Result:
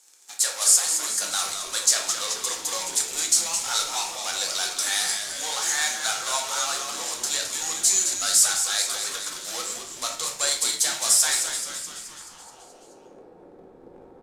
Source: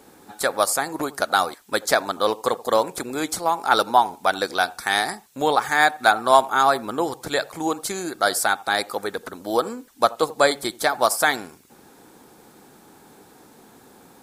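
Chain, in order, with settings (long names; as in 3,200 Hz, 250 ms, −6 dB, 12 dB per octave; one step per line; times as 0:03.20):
high-pass filter 320 Hz 12 dB per octave
in parallel at −7 dB: fuzz pedal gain 38 dB, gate −43 dBFS
on the sum: band-pass filter sweep 6,800 Hz → 470 Hz, 0:11.45–0:12.81
echo with shifted repeats 214 ms, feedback 60%, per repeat −110 Hz, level −8 dB
on a send at −1 dB: convolution reverb RT60 0.50 s, pre-delay 4 ms
on the sum: level +4.5 dB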